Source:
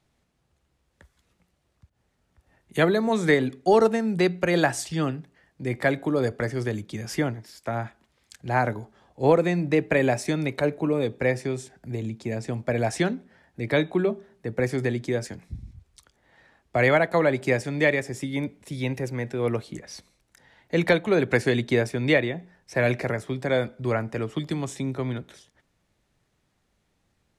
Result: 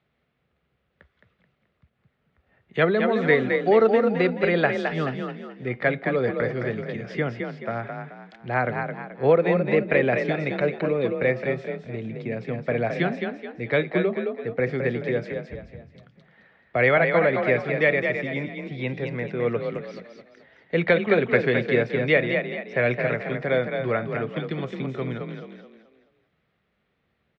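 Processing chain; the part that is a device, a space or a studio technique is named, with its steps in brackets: frequency-shifting delay pedal into a guitar cabinet (frequency-shifting echo 215 ms, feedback 38%, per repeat +34 Hz, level -5.5 dB; cabinet simulation 78–3500 Hz, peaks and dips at 100 Hz -7 dB, 300 Hz -6 dB, 470 Hz +3 dB, 910 Hz -6 dB, 1.3 kHz +3 dB, 2.1 kHz +3 dB)

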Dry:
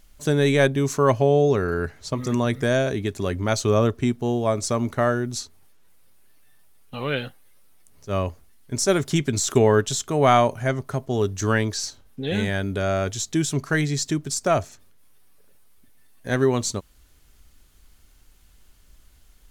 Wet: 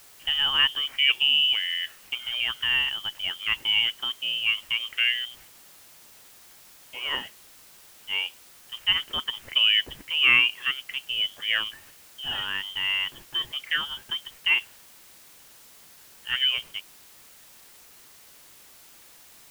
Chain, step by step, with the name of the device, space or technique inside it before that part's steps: scrambled radio voice (band-pass 360–2800 Hz; frequency inversion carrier 3.4 kHz; white noise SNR 23 dB); trim -1.5 dB

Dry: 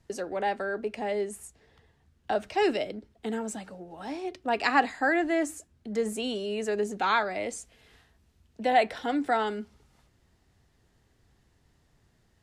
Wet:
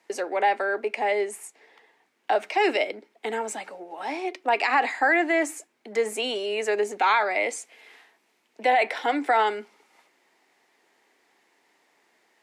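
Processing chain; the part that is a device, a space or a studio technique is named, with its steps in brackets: laptop speaker (high-pass 310 Hz 24 dB/octave; peaking EQ 890 Hz +6 dB 0.59 oct; peaking EQ 2.2 kHz +10 dB 0.5 oct; peak limiter -16.5 dBFS, peak gain reduction 11 dB); trim +4 dB

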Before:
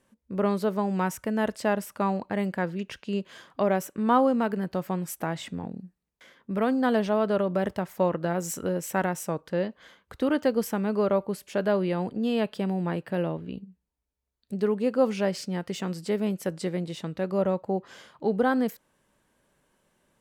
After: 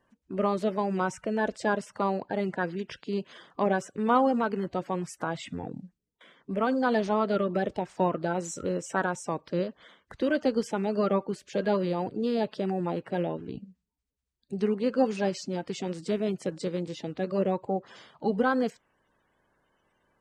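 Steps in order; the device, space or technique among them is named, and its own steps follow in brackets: clip after many re-uploads (low-pass 8.1 kHz 24 dB/octave; coarse spectral quantiser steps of 30 dB); trim -1 dB

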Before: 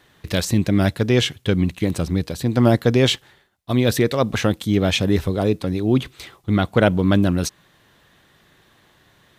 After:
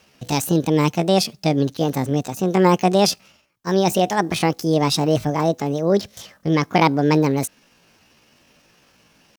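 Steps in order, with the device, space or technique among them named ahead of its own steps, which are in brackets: chipmunk voice (pitch shift +7.5 st)

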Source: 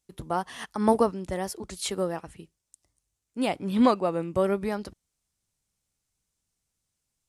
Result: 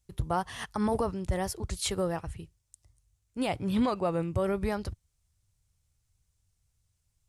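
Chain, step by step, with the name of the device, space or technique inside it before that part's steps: car stereo with a boomy subwoofer (resonant low shelf 150 Hz +12.5 dB, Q 1.5; peak limiter -19 dBFS, peak gain reduction 10.5 dB)

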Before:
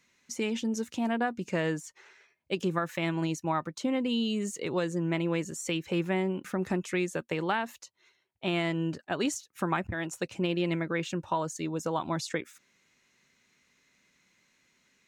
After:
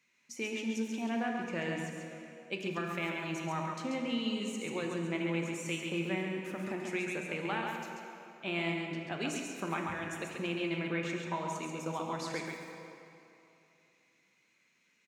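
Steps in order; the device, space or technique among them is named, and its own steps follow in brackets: PA in a hall (high-pass 130 Hz; peaking EQ 2.4 kHz +7.5 dB 0.41 oct; delay 136 ms -5 dB; reverberation RT60 2.9 s, pre-delay 6 ms, DRR 2 dB); trim -8.5 dB

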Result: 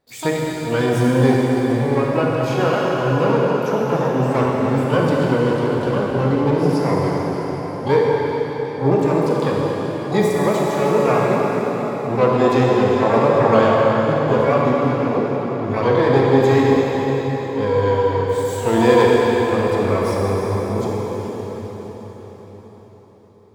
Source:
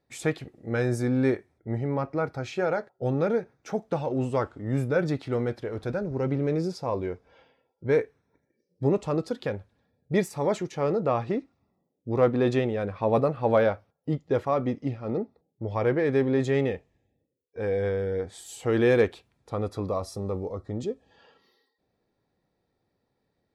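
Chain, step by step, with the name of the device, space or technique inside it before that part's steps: shimmer-style reverb (harmony voices +12 st -8 dB; reverberation RT60 5.3 s, pre-delay 24 ms, DRR -4 dB); trim +4 dB

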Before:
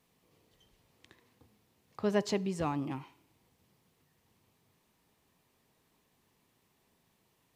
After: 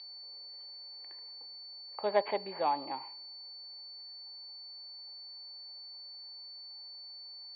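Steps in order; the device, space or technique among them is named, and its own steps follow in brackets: toy sound module (decimation joined by straight lines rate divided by 6×; class-D stage that switches slowly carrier 4.5 kHz; cabinet simulation 550–3800 Hz, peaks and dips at 570 Hz +8 dB, 850 Hz +10 dB, 1.3 kHz -4 dB, 2.2 kHz +8 dB, 3.4 kHz +4 dB); trim +1 dB

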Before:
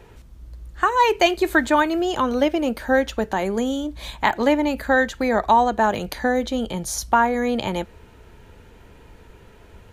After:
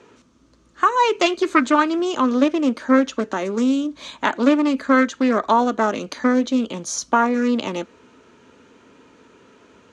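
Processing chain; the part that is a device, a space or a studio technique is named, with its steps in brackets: full-range speaker at full volume (loudspeaker Doppler distortion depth 0.23 ms; cabinet simulation 230–7900 Hz, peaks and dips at 260 Hz +9 dB, 780 Hz -7 dB, 1.2 kHz +6 dB, 1.9 kHz -3 dB, 6.3 kHz +5 dB)

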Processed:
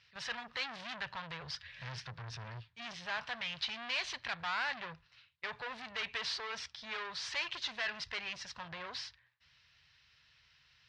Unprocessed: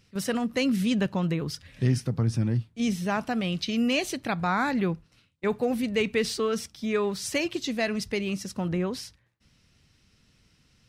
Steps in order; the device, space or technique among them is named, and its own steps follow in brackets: scooped metal amplifier (valve stage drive 33 dB, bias 0.5; cabinet simulation 94–4400 Hz, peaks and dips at 100 Hz -5 dB, 190 Hz -9 dB, 970 Hz +5 dB, 1.7 kHz +6 dB; amplifier tone stack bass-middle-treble 10-0-10); trim +6.5 dB

